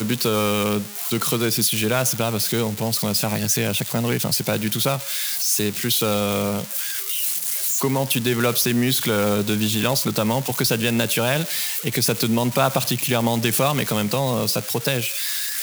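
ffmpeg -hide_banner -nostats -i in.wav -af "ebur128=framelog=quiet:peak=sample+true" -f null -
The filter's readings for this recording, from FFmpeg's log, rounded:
Integrated loudness:
  I:         -20.5 LUFS
  Threshold: -30.5 LUFS
Loudness range:
  LRA:         1.2 LU
  Threshold: -40.5 LUFS
  LRA low:   -21.0 LUFS
  LRA high:  -19.8 LUFS
Sample peak:
  Peak:       -4.9 dBFS
True peak:
  Peak:       -4.9 dBFS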